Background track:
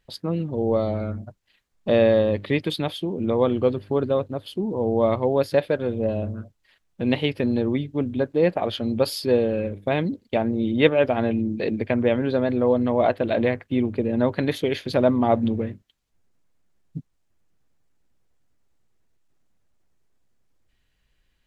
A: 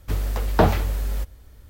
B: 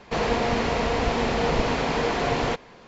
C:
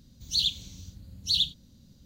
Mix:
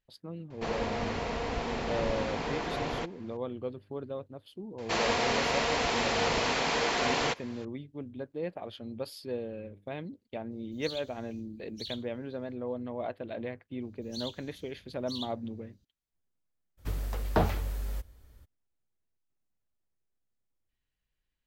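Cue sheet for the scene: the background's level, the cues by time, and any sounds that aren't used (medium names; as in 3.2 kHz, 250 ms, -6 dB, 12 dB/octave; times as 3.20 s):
background track -16 dB
0.50 s: add B -9.5 dB
4.78 s: add B -3.5 dB + tilt EQ +2.5 dB/octave
10.51 s: add C -16.5 dB
13.81 s: add C -15.5 dB
16.77 s: add A -9 dB, fades 0.02 s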